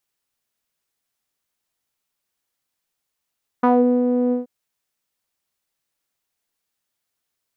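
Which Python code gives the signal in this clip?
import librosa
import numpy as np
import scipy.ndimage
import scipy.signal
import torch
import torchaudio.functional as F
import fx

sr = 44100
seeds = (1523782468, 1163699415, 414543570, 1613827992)

y = fx.sub_voice(sr, note=59, wave='saw', cutoff_hz=430.0, q=2.8, env_oct=1.5, env_s=0.2, attack_ms=8.3, decay_s=0.39, sustain_db=-5.0, release_s=0.14, note_s=0.69, slope=12)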